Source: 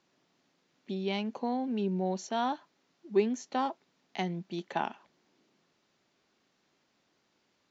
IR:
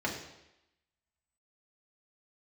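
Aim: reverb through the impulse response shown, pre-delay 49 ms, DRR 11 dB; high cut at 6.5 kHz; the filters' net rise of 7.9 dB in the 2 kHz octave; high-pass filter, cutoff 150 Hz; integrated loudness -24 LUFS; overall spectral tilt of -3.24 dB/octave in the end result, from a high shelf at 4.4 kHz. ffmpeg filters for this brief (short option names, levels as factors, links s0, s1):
-filter_complex "[0:a]highpass=150,lowpass=6500,equalizer=f=2000:t=o:g=9,highshelf=f=4400:g=5.5,asplit=2[s0][s1];[1:a]atrim=start_sample=2205,adelay=49[s2];[s1][s2]afir=irnorm=-1:irlink=0,volume=0.119[s3];[s0][s3]amix=inputs=2:normalize=0,volume=2.51"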